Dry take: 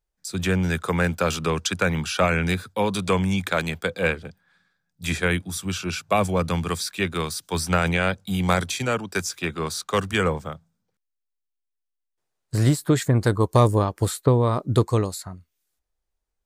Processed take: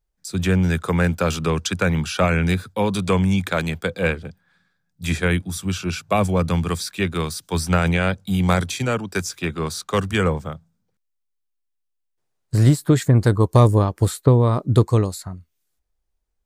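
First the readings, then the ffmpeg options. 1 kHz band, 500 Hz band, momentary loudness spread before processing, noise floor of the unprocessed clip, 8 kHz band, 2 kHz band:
+0.5 dB, +1.5 dB, 9 LU, -81 dBFS, 0.0 dB, 0.0 dB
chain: -af "lowshelf=f=300:g=6"

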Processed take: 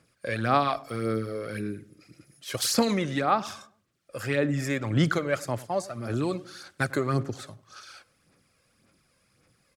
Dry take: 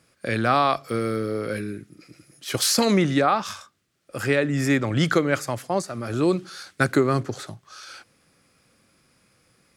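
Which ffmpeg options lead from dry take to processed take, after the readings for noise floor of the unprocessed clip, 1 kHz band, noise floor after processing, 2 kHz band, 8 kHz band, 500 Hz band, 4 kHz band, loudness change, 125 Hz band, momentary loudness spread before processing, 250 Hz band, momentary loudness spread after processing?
-65 dBFS, -4.0 dB, -69 dBFS, -5.5 dB, -5.5 dB, -5.5 dB, -5.5 dB, -5.0 dB, -3.0 dB, 19 LU, -5.5 dB, 19 LU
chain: -filter_complex "[0:a]aphaser=in_gain=1:out_gain=1:delay=1.9:decay=0.48:speed=1.8:type=sinusoidal,asplit=2[s0][s1];[s1]adelay=99,lowpass=f=910:p=1,volume=0.141,asplit=2[s2][s3];[s3]adelay=99,lowpass=f=910:p=1,volume=0.46,asplit=2[s4][s5];[s5]adelay=99,lowpass=f=910:p=1,volume=0.46,asplit=2[s6][s7];[s7]adelay=99,lowpass=f=910:p=1,volume=0.46[s8];[s0][s2][s4][s6][s8]amix=inputs=5:normalize=0,volume=0.473"

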